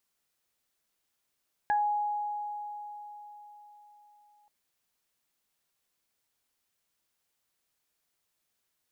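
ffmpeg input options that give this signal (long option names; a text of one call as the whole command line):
ffmpeg -f lavfi -i "aevalsrc='0.0708*pow(10,-3*t/4.3)*sin(2*PI*832*t)+0.0398*pow(10,-3*t/0.2)*sin(2*PI*1664*t)':duration=2.78:sample_rate=44100" out.wav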